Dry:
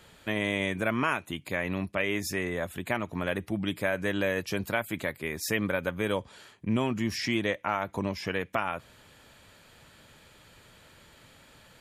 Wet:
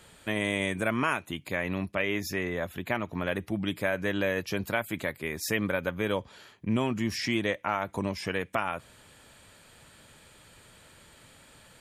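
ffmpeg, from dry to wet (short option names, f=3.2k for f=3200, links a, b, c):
-af "asetnsamples=n=441:p=0,asendcmd='1.19 equalizer g -2;1.99 equalizer g -14;3.32 equalizer g -2;3.95 equalizer g -8.5;4.66 equalizer g -0.5;5.8 equalizer g -8;6.7 equalizer g 2;7.84 equalizer g 9',equalizer=f=8.6k:t=o:w=0.34:g=9.5"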